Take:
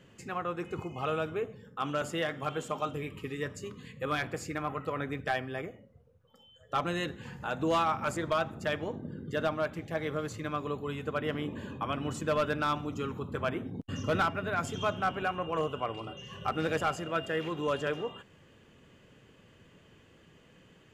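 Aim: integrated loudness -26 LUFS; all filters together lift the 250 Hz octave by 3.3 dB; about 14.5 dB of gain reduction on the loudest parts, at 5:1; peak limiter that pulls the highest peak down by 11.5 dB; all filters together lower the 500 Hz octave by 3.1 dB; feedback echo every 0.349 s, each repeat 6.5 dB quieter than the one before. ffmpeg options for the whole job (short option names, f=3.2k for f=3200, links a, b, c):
-af "equalizer=f=250:t=o:g=6.5,equalizer=f=500:t=o:g=-5.5,acompressor=threshold=-42dB:ratio=5,alimiter=level_in=14dB:limit=-24dB:level=0:latency=1,volume=-14dB,aecho=1:1:349|698|1047|1396|1745|2094:0.473|0.222|0.105|0.0491|0.0231|0.0109,volume=21dB"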